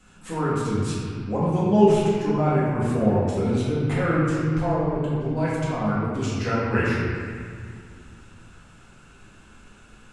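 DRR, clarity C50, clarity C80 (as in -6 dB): -10.5 dB, -2.5 dB, -0.5 dB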